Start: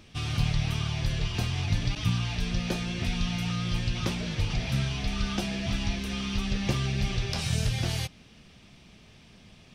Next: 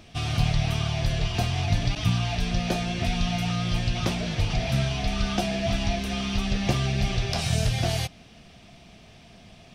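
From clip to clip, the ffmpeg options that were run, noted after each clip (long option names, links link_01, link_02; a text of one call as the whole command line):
ffmpeg -i in.wav -af "equalizer=frequency=690:width_type=o:width=0.22:gain=12,volume=3dB" out.wav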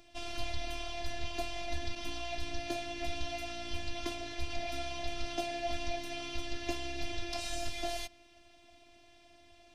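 ffmpeg -i in.wav -af "afftfilt=real='hypot(re,im)*cos(PI*b)':imag='0':win_size=512:overlap=0.75,volume=-6dB" out.wav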